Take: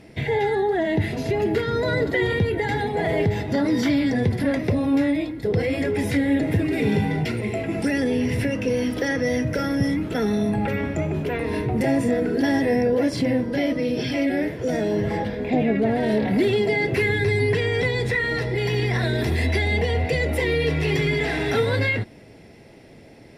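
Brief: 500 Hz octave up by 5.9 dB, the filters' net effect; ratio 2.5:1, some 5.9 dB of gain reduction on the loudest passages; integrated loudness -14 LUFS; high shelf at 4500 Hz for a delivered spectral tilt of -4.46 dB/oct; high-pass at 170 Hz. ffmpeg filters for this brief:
-af "highpass=170,equalizer=f=500:t=o:g=7,highshelf=f=4.5k:g=5,acompressor=threshold=-21dB:ratio=2.5,volume=9.5dB"

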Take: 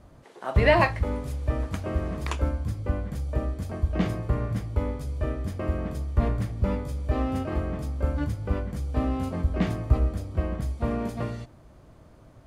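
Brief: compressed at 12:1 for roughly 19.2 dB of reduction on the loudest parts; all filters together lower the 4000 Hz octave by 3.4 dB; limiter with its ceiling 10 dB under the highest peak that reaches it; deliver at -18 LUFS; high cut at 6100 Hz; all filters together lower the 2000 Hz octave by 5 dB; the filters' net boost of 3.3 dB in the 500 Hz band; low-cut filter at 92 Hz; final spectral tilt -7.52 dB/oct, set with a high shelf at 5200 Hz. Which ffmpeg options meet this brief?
-af "highpass=92,lowpass=6.1k,equalizer=f=500:t=o:g=4.5,equalizer=f=2k:t=o:g=-6,equalizer=f=4k:t=o:g=-5,highshelf=f=5.2k:g=8.5,acompressor=threshold=-32dB:ratio=12,volume=21.5dB,alimiter=limit=-8.5dB:level=0:latency=1"

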